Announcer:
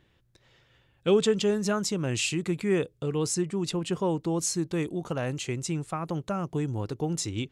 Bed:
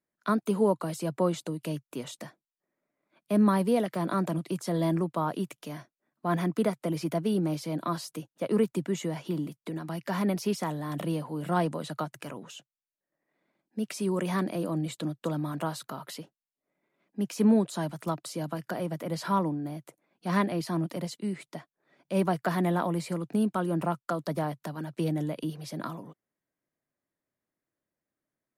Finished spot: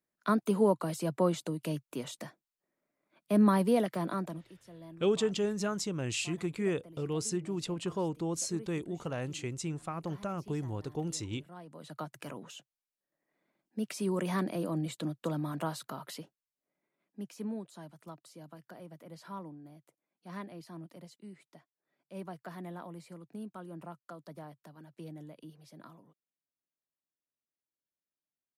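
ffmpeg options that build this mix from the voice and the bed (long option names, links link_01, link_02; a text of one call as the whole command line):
ffmpeg -i stem1.wav -i stem2.wav -filter_complex "[0:a]adelay=3950,volume=-6dB[link_01];[1:a]volume=18dB,afade=type=out:start_time=3.85:duration=0.67:silence=0.0891251,afade=type=in:start_time=11.66:duration=0.63:silence=0.105925,afade=type=out:start_time=16.19:duration=1.31:silence=0.211349[link_02];[link_01][link_02]amix=inputs=2:normalize=0" out.wav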